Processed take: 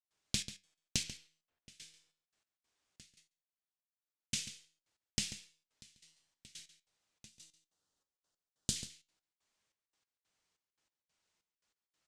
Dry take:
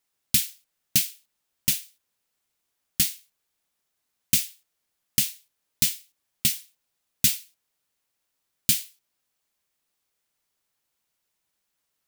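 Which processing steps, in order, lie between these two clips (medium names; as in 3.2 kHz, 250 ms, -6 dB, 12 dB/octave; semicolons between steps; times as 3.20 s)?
low-pass 7.9 kHz 24 dB/octave; 1.03–1.81 s: level-controlled noise filter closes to 2.3 kHz, open at -28.5 dBFS; 7.29–8.76 s: peaking EQ 2.3 kHz -14 dB 0.71 oct; compression, threshold -30 dBFS, peak gain reduction 11 dB; feedback comb 160 Hz, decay 0.58 s, harmonics all, mix 50%; trance gate ".xxx..x." 142 bpm -24 dB; flange 0.41 Hz, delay 9.1 ms, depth 3.1 ms, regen +75%; echo from a far wall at 24 m, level -12 dB; 3.03–4.37 s: dip -20.5 dB, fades 0.28 s; trim +8.5 dB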